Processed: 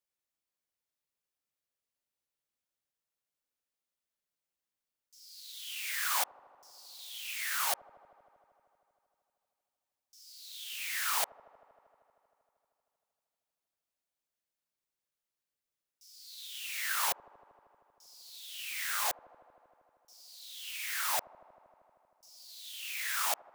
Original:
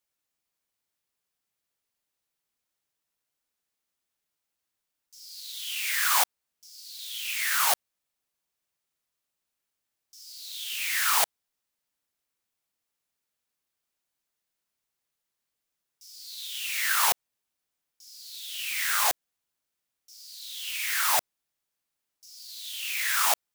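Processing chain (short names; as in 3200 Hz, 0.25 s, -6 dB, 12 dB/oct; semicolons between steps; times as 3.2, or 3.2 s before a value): bell 550 Hz +4 dB 0.31 oct; on a send: dark delay 78 ms, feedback 84%, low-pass 450 Hz, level -11 dB; on the sum: gain -8 dB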